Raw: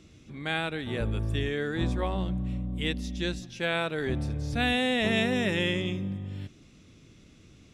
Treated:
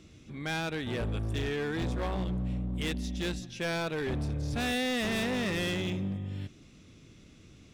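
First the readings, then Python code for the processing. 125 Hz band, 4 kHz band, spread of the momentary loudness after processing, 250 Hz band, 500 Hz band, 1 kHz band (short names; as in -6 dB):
-2.0 dB, -4.0 dB, 6 LU, -2.5 dB, -3.5 dB, -3.0 dB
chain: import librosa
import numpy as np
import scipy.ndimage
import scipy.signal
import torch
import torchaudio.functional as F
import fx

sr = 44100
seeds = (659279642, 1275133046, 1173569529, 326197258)

y = np.clip(10.0 ** (28.5 / 20.0) * x, -1.0, 1.0) / 10.0 ** (28.5 / 20.0)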